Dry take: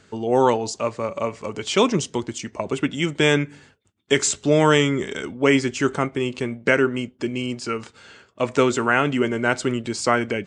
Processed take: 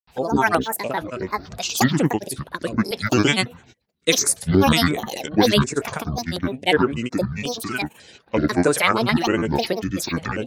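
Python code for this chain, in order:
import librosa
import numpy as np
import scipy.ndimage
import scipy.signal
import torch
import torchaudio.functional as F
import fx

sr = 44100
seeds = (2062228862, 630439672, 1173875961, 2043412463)

y = fx.bass_treble(x, sr, bass_db=-1, treble_db=4)
y = fx.granulator(y, sr, seeds[0], grain_ms=100.0, per_s=20.0, spray_ms=100.0, spread_st=12)
y = fx.filter_held_notch(y, sr, hz=5.5, low_hz=320.0, high_hz=7700.0)
y = y * librosa.db_to_amplitude(3.0)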